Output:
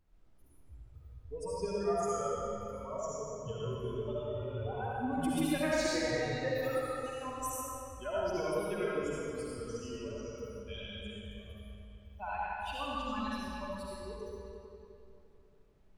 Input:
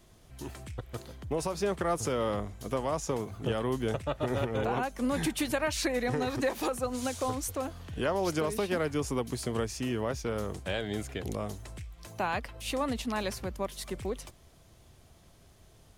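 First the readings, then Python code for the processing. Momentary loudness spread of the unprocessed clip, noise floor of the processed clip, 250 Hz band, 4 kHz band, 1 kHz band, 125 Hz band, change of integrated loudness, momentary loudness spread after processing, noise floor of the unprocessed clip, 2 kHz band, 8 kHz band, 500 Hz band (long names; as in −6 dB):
11 LU, −61 dBFS, −5.0 dB, −5.0 dB, −3.5 dB, −6.5 dB, −4.0 dB, 15 LU, −58 dBFS, −4.0 dB, −6.0 dB, −3.5 dB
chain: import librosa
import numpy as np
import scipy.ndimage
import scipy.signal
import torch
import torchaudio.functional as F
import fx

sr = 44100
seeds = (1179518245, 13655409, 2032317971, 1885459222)

y = fx.bin_expand(x, sr, power=3.0)
y = fx.dmg_noise_colour(y, sr, seeds[0], colour='brown', level_db=-67.0)
y = fx.rev_freeverb(y, sr, rt60_s=2.9, hf_ratio=0.8, predelay_ms=30, drr_db=-8.0)
y = F.gain(torch.from_numpy(y), -4.5).numpy()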